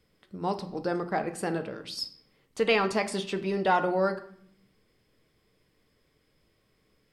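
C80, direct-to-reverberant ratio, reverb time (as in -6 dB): 16.5 dB, 7.5 dB, 0.65 s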